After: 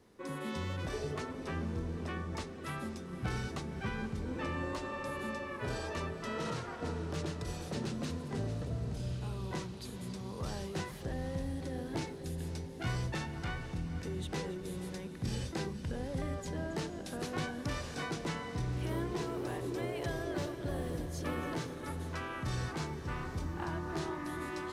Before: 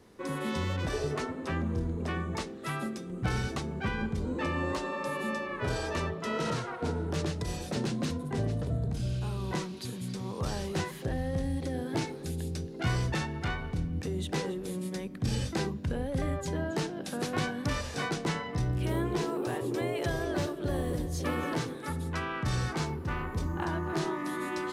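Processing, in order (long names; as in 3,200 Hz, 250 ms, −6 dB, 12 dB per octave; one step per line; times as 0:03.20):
feedback delay with all-pass diffusion 507 ms, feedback 68%, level −12 dB
level −6 dB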